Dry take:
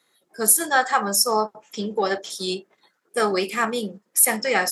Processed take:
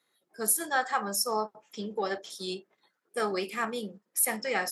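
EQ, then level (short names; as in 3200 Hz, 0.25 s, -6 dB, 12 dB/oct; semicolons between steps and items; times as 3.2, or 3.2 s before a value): bell 7300 Hz -3 dB 0.78 oct; -8.5 dB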